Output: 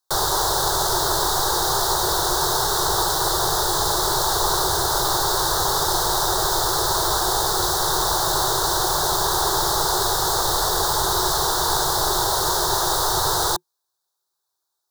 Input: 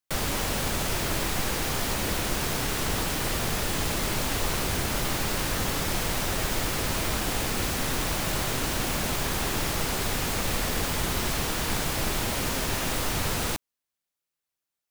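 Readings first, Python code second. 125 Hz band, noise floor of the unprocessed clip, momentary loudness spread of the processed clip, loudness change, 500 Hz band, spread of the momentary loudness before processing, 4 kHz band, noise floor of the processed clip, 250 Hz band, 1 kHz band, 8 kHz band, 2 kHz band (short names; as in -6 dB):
-0.5 dB, under -85 dBFS, 0 LU, +8.0 dB, +7.5 dB, 0 LU, +9.0 dB, -79 dBFS, -0.5 dB, +12.5 dB, +9.0 dB, +1.5 dB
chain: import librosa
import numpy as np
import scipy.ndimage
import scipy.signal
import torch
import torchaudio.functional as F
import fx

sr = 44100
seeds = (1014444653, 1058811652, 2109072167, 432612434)

y = fx.curve_eq(x, sr, hz=(160.0, 240.0, 360.0, 530.0, 890.0, 1600.0, 2500.0, 3700.0, 9100.0), db=(0, -29, 11, 4, 15, 6, -25, 12, 8))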